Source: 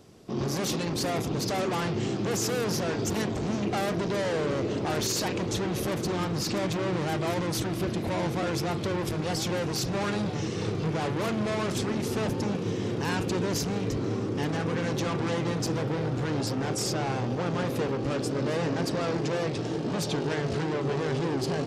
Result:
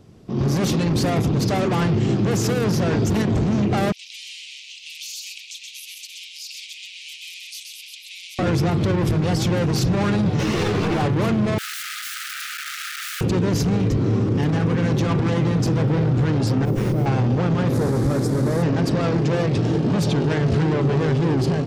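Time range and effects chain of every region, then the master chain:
0:03.92–0:08.39: Butterworth high-pass 2,400 Hz 72 dB per octave + downward compressor 2.5 to 1, threshold −41 dBFS + single-tap delay 127 ms −4 dB
0:10.39–0:11.02: high-shelf EQ 8,800 Hz +5.5 dB + mid-hump overdrive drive 28 dB, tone 3,500 Hz, clips at −19 dBFS + string-ensemble chorus
0:11.58–0:13.21: wrap-around overflow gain 30.5 dB + linear-phase brick-wall high-pass 1,200 Hz
0:16.65–0:17.06: flat-topped bell 1,900 Hz −10 dB 2.8 octaves + bad sample-rate conversion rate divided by 3×, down filtered, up hold + windowed peak hold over 9 samples
0:17.73–0:18.63: linear delta modulator 64 kbit/s, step −30 dBFS + parametric band 2,800 Hz −14 dB 0.72 octaves
whole clip: bass and treble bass +9 dB, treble −4 dB; automatic gain control gain up to 8 dB; brickwall limiter −12.5 dBFS

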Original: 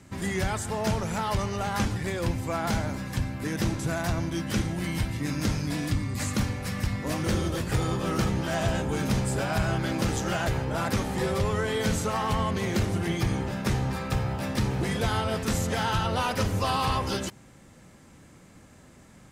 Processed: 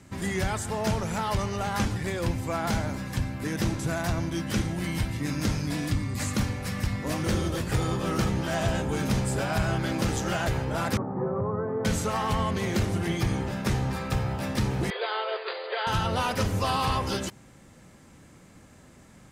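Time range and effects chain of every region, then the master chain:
0:10.97–0:11.85: elliptic band-pass filter 110–1,200 Hz, stop band 50 dB + high-frequency loss of the air 210 metres
0:14.90–0:15.87: linear-phase brick-wall band-pass 360–4,900 Hz + notch filter 810 Hz, Q 15
whole clip: no processing

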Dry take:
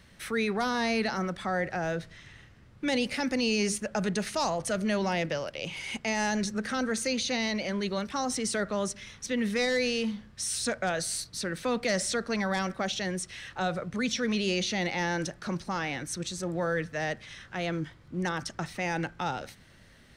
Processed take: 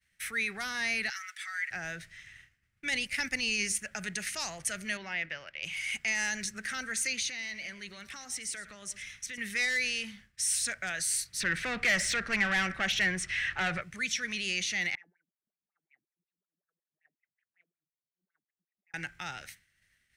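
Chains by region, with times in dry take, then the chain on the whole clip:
0:01.10–0:01.71: high-pass filter 1,500 Hz 24 dB per octave + comb filter 6.9 ms, depth 74%
0:02.90–0:03.75: low-shelf EQ 93 Hz +10 dB + transient designer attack +7 dB, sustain −6 dB
0:04.97–0:05.63: low-pass filter 2,800 Hz + low-shelf EQ 340 Hz −7 dB
0:07.28–0:09.38: downward compressor 4 to 1, threshold −34 dBFS + single-tap delay 109 ms −15 dB
0:11.40–0:13.82: RIAA equalisation playback + mid-hump overdrive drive 19 dB, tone 4,900 Hz, clips at −14 dBFS
0:14.95–0:18.94: tilt shelving filter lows +9.5 dB, about 810 Hz + LFO wah 5.4 Hz 200–2,500 Hz, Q 8.3 + downward compressor 8 to 1, threshold −52 dBFS
whole clip: octave-band graphic EQ 125/250/500/1,000/2,000/4,000 Hz −3/−10/−12/−12/+7/−7 dB; downward expander −48 dBFS; spectral tilt +1.5 dB per octave

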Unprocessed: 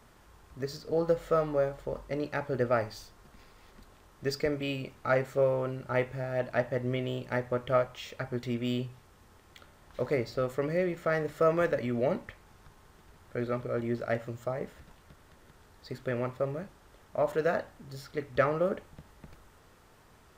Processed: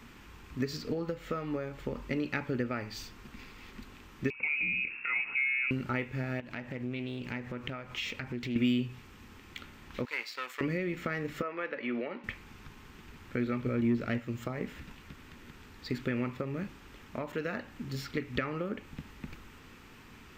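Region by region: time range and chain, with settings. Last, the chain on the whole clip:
0:04.30–0:05.71: downward compressor 3 to 1, threshold −44 dBFS + voice inversion scrambler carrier 2,700 Hz
0:06.40–0:08.56: downward compressor 5 to 1, threshold −41 dBFS + highs frequency-modulated by the lows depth 0.25 ms
0:10.05–0:10.61: gain on one half-wave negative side −7 dB + high-pass filter 1,200 Hz
0:11.42–0:12.24: high-pass filter 490 Hz + high-frequency loss of the air 260 metres
0:13.66–0:14.20: low-shelf EQ 330 Hz +5.5 dB + leveller curve on the samples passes 1
whole clip: parametric band 10,000 Hz −7 dB 0.26 octaves; downward compressor 6 to 1, threshold −35 dBFS; graphic EQ with 15 bands 250 Hz +8 dB, 630 Hz −10 dB, 2,500 Hz +9 dB, 10,000 Hz −3 dB; level +5 dB

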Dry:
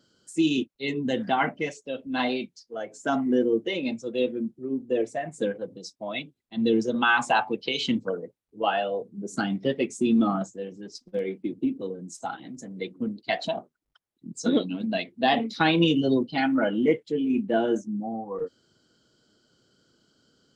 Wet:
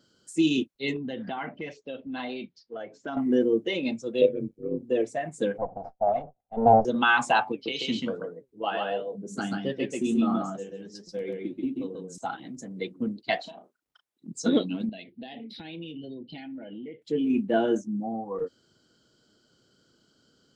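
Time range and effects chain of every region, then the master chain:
0:00.96–0:03.17: low-pass filter 4,400 Hz 24 dB per octave + downward compressor 3 to 1, threshold −33 dBFS
0:04.21–0:04.83: amplitude modulation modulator 97 Hz, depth 90% + hollow resonant body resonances 500/2,300 Hz, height 13 dB
0:05.58–0:06.85: lower of the sound and its delayed copy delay 1.4 ms + low-pass with resonance 740 Hz, resonance Q 7.6
0:07.52–0:12.18: flanger 1.4 Hz, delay 5.8 ms, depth 6.8 ms, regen +73% + single-tap delay 136 ms −3 dB
0:13.41–0:14.28: high-pass filter 330 Hz 6 dB per octave + downward compressor 16 to 1, threshold −39 dBFS + double-tracking delay 36 ms −8 dB
0:14.89–0:17.02: downward compressor, threshold −37 dBFS + phaser with its sweep stopped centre 2,900 Hz, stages 4
whole clip: no processing

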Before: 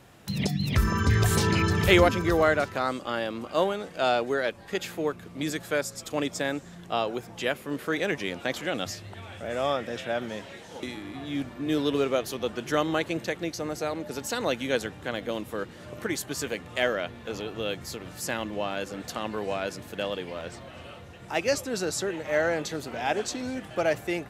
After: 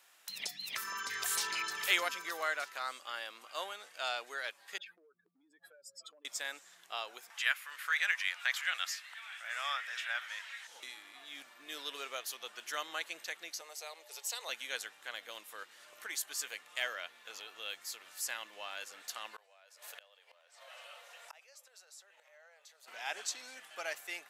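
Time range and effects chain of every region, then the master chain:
0:04.78–0:06.25: expanding power law on the bin magnitudes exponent 2.8 + parametric band 7,000 Hz −14.5 dB 0.47 octaves + downward compressor 16 to 1, threshold −38 dBFS
0:07.30–0:10.67: high-pass filter 1,000 Hz + upward compression, threshold −45 dBFS + parametric band 1,700 Hz +9.5 dB 1.7 octaves
0:13.61–0:14.49: Butterworth high-pass 370 Hz 48 dB per octave + parametric band 1,500 Hz −10 dB 0.56 octaves
0:19.36–0:22.88: low shelf with overshoot 400 Hz −11 dB, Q 3 + gate with flip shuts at −25 dBFS, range −32 dB + envelope flattener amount 50%
whole clip: high-pass filter 1,200 Hz 12 dB per octave; high-shelf EQ 5,500 Hz +6.5 dB; level −7 dB

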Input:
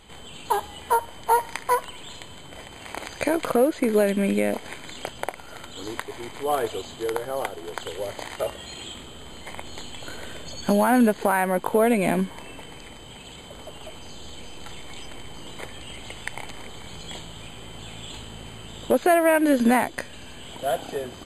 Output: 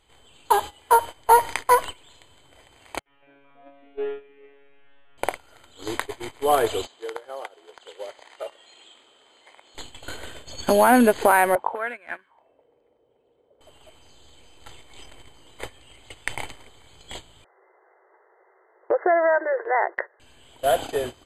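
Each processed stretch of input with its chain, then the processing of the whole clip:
0:00.48–0:01.17: low-shelf EQ 190 Hz −5 dB + notch filter 1,900 Hz, Q 26
0:02.99–0:05.18: linear delta modulator 16 kbit/s, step −24.5 dBFS + noise gate with hold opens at −23 dBFS, closes at −29 dBFS + tuned comb filter 140 Hz, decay 1.4 s, mix 100%
0:06.86–0:09.75: band-pass filter 410–7,100 Hz + downward compressor, threshold −31 dBFS
0:11.55–0:13.61: low-shelf EQ 210 Hz +7.5 dB + envelope filter 410–1,600 Hz, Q 3.4, up, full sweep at −16 dBFS
0:17.44–0:20.20: downward compressor 5 to 1, threshold −19 dBFS + log-companded quantiser 8 bits + linear-phase brick-wall band-pass 340–2,100 Hz
whole clip: noise gate −34 dBFS, range −17 dB; parametric band 190 Hz −14 dB 0.44 octaves; level +5 dB

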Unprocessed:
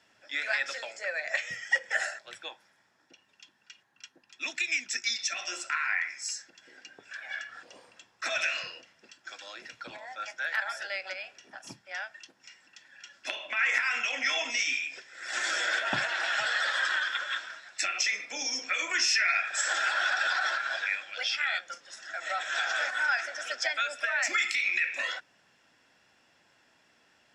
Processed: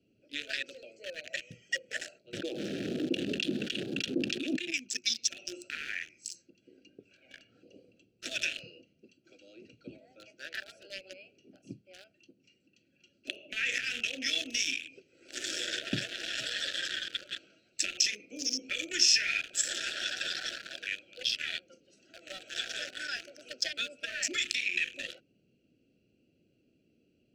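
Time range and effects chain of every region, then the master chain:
0:02.33–0:04.74: band-pass filter 310–4,900 Hz + spectral tilt −3.5 dB per octave + envelope flattener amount 100%
whole clip: adaptive Wiener filter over 25 samples; Chebyshev band-stop filter 380–2,500 Hz, order 2; parametric band 2,100 Hz −11 dB 0.33 octaves; level +5.5 dB

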